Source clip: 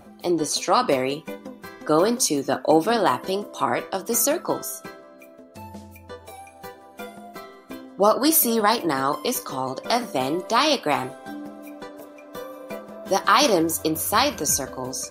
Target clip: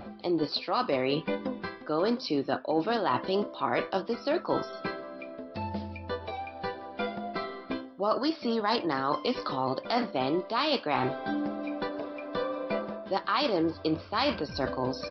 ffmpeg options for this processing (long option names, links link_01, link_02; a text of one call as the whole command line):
ffmpeg -i in.wav -af "areverse,acompressor=threshold=-30dB:ratio=6,areverse,aresample=11025,aresample=44100,volume=5dB" out.wav